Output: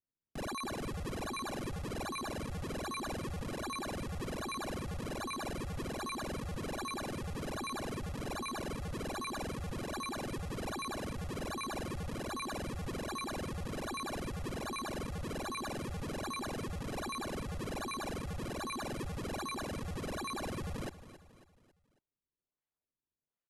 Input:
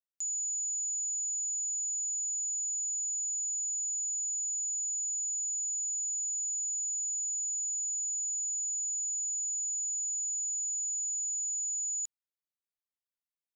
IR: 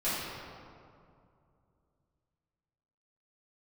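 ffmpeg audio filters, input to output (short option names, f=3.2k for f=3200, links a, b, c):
-af "acrusher=samples=22:mix=1:aa=0.000001:lfo=1:lforange=35.2:lforate=2.2,aecho=1:1:158|316|474|632:0.188|0.0848|0.0381|0.0172,asetrate=25442,aresample=44100,volume=-5.5dB"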